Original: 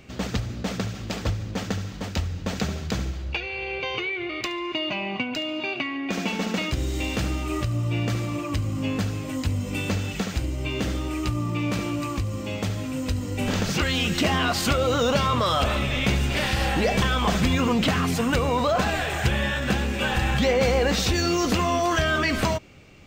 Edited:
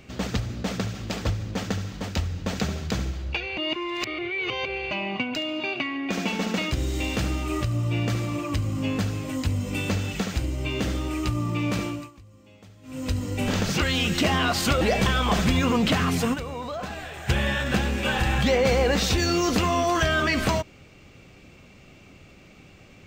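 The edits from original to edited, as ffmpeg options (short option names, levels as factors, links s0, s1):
-filter_complex "[0:a]asplit=8[s0][s1][s2][s3][s4][s5][s6][s7];[s0]atrim=end=3.572[s8];[s1]atrim=start=3.568:end=4.912,asetpts=PTS-STARTPTS,areverse[s9];[s2]atrim=start=4.908:end=12.11,asetpts=PTS-STARTPTS,afade=t=out:st=6.912:d=0.29:silence=0.0794328[s10];[s3]atrim=start=12.11:end=12.82,asetpts=PTS-STARTPTS,volume=0.0794[s11];[s4]atrim=start=12.82:end=14.812,asetpts=PTS-STARTPTS,afade=t=in:d=0.29:silence=0.0794328[s12];[s5]atrim=start=16.768:end=18.42,asetpts=PTS-STARTPTS,afade=t=out:st=1.522:d=0.13:c=exp:silence=0.298538[s13];[s6]atrim=start=18.42:end=19.13,asetpts=PTS-STARTPTS,volume=0.299[s14];[s7]atrim=start=19.13,asetpts=PTS-STARTPTS,afade=t=in:d=0.13:c=exp:silence=0.298538[s15];[s8][s9]acrossfade=d=0.004:c1=hsin:c2=hsin[s16];[s10][s11][s12]concat=n=3:v=0:a=1[s17];[s16][s17]acrossfade=d=0.004:c1=hsin:c2=hsin[s18];[s13][s14][s15]concat=n=3:v=0:a=1[s19];[s18][s19]acrossfade=d=0.004:c1=hsin:c2=hsin"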